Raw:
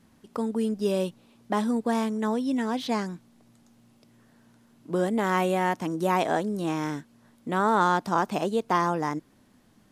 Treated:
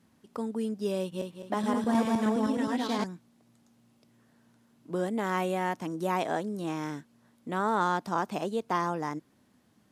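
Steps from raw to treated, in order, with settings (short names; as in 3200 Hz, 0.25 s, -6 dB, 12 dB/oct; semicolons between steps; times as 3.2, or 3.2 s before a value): 1.01–3.04 regenerating reverse delay 0.104 s, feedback 58%, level 0 dB; HPF 69 Hz; gain -5 dB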